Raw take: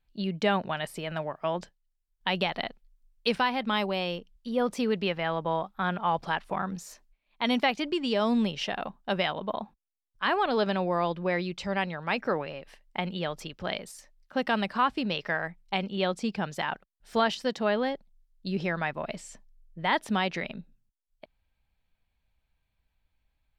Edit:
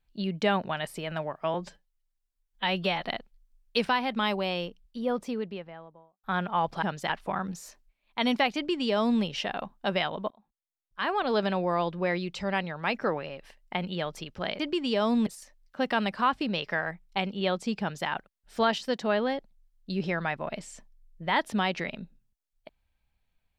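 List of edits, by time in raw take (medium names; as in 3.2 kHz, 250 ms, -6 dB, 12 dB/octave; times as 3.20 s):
1.54–2.53 s: stretch 1.5×
4.15–5.74 s: studio fade out
7.79–8.46 s: copy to 13.83 s
9.54–10.62 s: fade in
16.37–16.64 s: copy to 6.33 s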